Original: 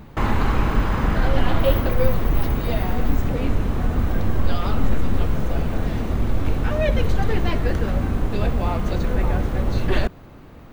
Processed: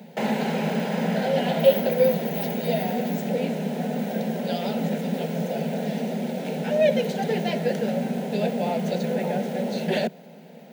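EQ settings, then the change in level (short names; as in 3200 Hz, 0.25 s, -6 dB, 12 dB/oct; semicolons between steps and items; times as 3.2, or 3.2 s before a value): rippled Chebyshev high-pass 160 Hz, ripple 3 dB; fixed phaser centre 310 Hz, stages 6; +5.0 dB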